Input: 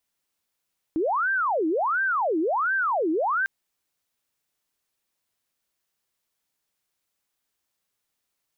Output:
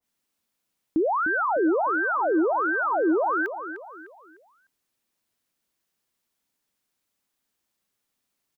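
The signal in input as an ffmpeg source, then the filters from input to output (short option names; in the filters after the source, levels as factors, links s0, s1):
-f lavfi -i "aevalsrc='0.0891*sin(2*PI*(945.5*t-634.5/(2*PI*1.4)*sin(2*PI*1.4*t)))':d=2.5:s=44100"
-filter_complex "[0:a]equalizer=f=240:t=o:w=1:g=6.5,asplit=2[s0][s1];[s1]adelay=302,lowpass=f=2000:p=1,volume=0.335,asplit=2[s2][s3];[s3]adelay=302,lowpass=f=2000:p=1,volume=0.4,asplit=2[s4][s5];[s5]adelay=302,lowpass=f=2000:p=1,volume=0.4,asplit=2[s6][s7];[s7]adelay=302,lowpass=f=2000:p=1,volume=0.4[s8];[s0][s2][s4][s6][s8]amix=inputs=5:normalize=0,adynamicequalizer=threshold=0.0112:dfrequency=1900:dqfactor=0.7:tfrequency=1900:tqfactor=0.7:attack=5:release=100:ratio=0.375:range=3:mode=cutabove:tftype=highshelf"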